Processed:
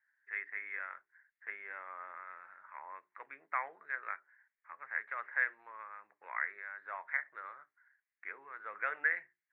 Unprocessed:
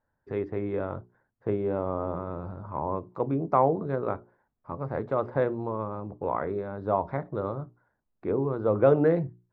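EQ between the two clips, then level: Butterworth band-pass 1900 Hz, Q 3.4; +13.0 dB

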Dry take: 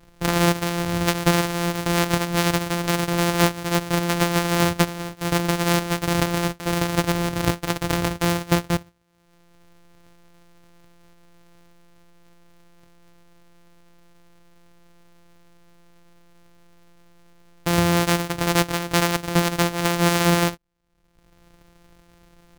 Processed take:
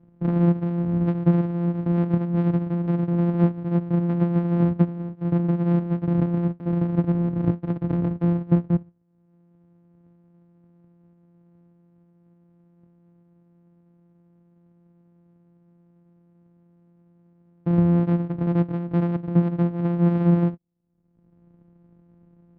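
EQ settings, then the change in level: band-pass 200 Hz, Q 1.4; air absorption 270 m; +4.5 dB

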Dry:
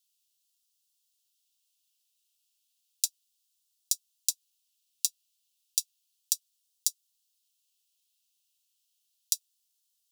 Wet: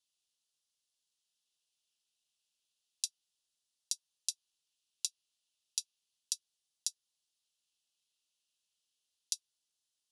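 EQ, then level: elliptic low-pass 11000 Hz; high shelf 3800 Hz -10.5 dB; dynamic EQ 7700 Hz, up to -4 dB, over -54 dBFS, Q 4.8; +1.5 dB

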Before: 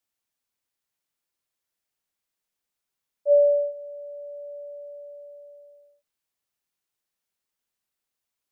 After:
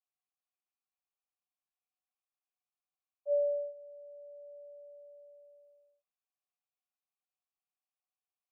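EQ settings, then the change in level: vowel filter a; HPF 500 Hz 24 dB/oct; Butterworth band-stop 650 Hz, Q 6.1; 0.0 dB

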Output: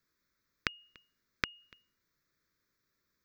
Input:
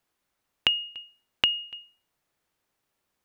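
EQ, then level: dynamic EQ 1400 Hz, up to +4 dB, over -41 dBFS, Q 1.3; fixed phaser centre 2900 Hz, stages 6; +1.0 dB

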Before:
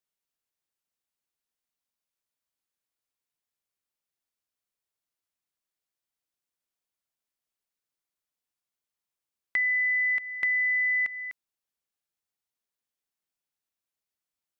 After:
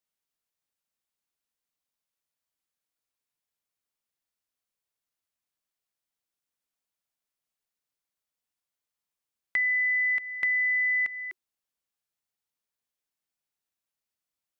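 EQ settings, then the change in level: notch 370 Hz, Q 12; 0.0 dB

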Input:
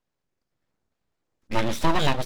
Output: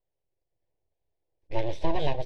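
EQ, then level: tape spacing loss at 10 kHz 27 dB; fixed phaser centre 540 Hz, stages 4; notch 7000 Hz, Q 12; 0.0 dB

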